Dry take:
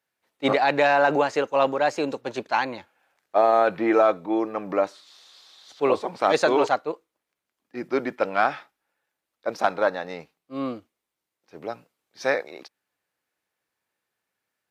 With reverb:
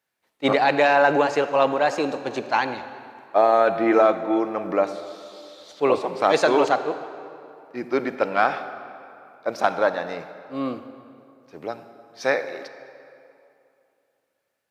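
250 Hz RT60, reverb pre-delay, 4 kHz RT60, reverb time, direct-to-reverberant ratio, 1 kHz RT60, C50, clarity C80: 2.7 s, 33 ms, 1.8 s, 2.7 s, 10.5 dB, 2.8 s, 11.0 dB, 12.0 dB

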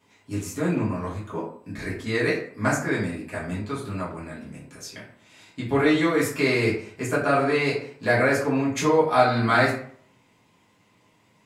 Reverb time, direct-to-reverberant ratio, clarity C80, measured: 0.55 s, −9.0 dB, 9.5 dB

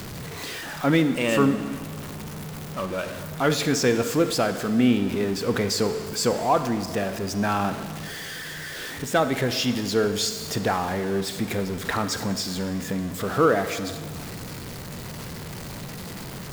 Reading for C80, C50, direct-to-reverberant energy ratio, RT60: 12.0 dB, 11.0 dB, 10.5 dB, 1.8 s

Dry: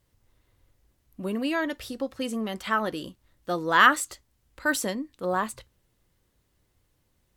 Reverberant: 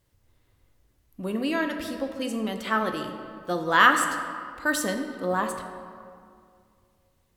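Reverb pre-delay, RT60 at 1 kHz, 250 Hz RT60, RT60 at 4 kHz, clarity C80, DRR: 8 ms, 2.2 s, 2.3 s, 1.3 s, 8.0 dB, 5.0 dB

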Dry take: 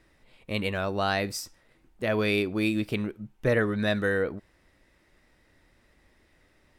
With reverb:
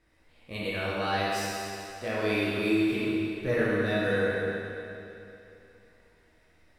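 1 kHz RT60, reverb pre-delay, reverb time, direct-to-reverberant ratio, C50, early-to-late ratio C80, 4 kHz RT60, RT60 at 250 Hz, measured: 2.9 s, 13 ms, 2.9 s, −8.5 dB, −4.5 dB, −2.0 dB, 2.7 s, 2.9 s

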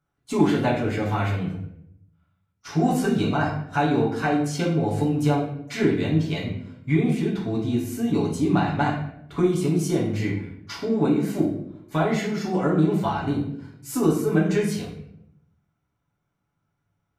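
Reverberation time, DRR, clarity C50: 0.75 s, −5.0 dB, 4.5 dB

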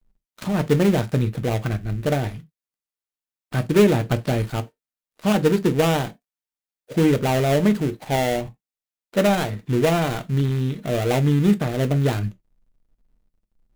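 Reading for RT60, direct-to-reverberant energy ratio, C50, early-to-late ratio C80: non-exponential decay, 8.0 dB, 24.0 dB, 35.0 dB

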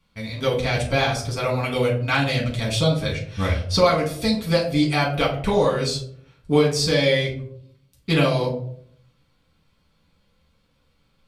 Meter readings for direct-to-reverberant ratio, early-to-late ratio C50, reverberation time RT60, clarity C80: −4.0 dB, 7.0 dB, 0.65 s, 11.5 dB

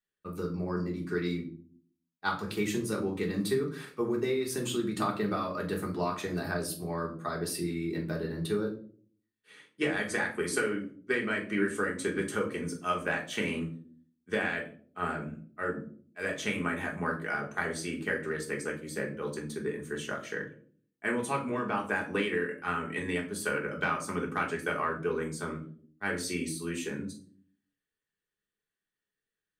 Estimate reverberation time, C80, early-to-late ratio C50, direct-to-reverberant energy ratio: 0.50 s, 15.0 dB, 10.5 dB, −1.0 dB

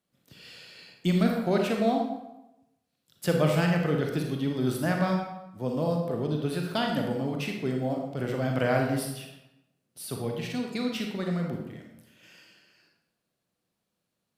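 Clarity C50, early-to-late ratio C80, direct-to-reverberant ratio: 3.0 dB, 6.0 dB, 1.0 dB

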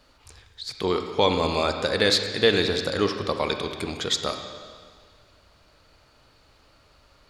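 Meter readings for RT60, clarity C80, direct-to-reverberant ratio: 1.8 s, 8.0 dB, 5.5 dB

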